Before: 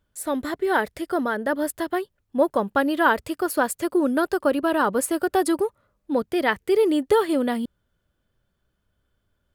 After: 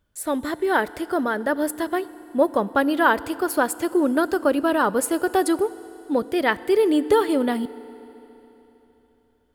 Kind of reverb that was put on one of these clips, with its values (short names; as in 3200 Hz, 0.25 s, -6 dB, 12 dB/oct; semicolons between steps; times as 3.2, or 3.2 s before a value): FDN reverb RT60 3.5 s, high-frequency decay 1×, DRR 17 dB; gain +1 dB